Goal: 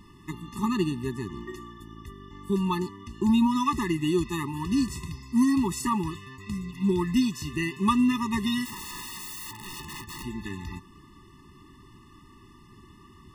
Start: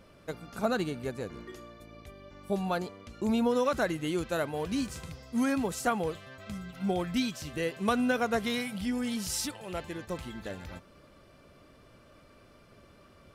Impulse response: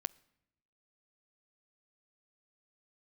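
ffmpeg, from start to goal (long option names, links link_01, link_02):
-filter_complex "[0:a]asplit=3[link_01][link_02][link_03];[link_01]afade=type=out:start_time=8.64:duration=0.02[link_04];[link_02]aeval=exprs='(mod(79.4*val(0)+1,2)-1)/79.4':channel_layout=same,afade=type=in:start_time=8.64:duration=0.02,afade=type=out:start_time=10.22:duration=0.02[link_05];[link_03]afade=type=in:start_time=10.22:duration=0.02[link_06];[link_04][link_05][link_06]amix=inputs=3:normalize=0,afftfilt=real='re*eq(mod(floor(b*sr/1024/420),2),0)':imag='im*eq(mod(floor(b*sr/1024/420),2),0)':win_size=1024:overlap=0.75,volume=7dB"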